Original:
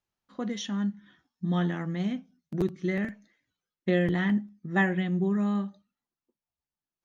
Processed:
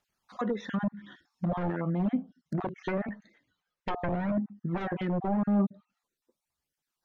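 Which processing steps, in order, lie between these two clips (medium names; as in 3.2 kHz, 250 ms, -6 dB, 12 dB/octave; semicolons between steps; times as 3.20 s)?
random holes in the spectrogram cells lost 24%; wavefolder -25 dBFS; bass shelf 200 Hz -8.5 dB; peak limiter -28.5 dBFS, peak gain reduction 6 dB; phaser 0.89 Hz, delay 2.4 ms, feedback 41%; low-pass that closes with the level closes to 950 Hz, closed at -33.5 dBFS; 2.58–4.81 s: treble shelf 5.1 kHz -12 dB; trim +8 dB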